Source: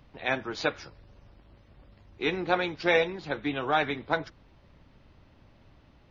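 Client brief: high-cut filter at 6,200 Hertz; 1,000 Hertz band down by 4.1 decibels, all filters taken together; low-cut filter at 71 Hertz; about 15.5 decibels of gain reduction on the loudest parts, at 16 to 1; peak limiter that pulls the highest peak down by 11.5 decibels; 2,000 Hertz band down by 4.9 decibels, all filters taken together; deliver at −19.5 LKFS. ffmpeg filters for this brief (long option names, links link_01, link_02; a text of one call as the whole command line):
ffmpeg -i in.wav -af "highpass=71,lowpass=6200,equalizer=frequency=1000:width_type=o:gain=-5,equalizer=frequency=2000:width_type=o:gain=-4.5,acompressor=threshold=-36dB:ratio=16,volume=27.5dB,alimiter=limit=-8.5dB:level=0:latency=1" out.wav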